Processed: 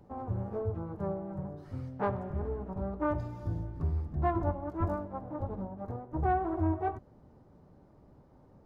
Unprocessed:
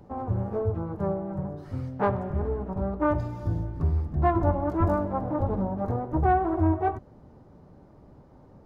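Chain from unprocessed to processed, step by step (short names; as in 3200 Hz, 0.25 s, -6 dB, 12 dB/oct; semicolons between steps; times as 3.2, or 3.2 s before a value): 4.43–6.19 upward expander 1.5:1, over -33 dBFS; gain -6.5 dB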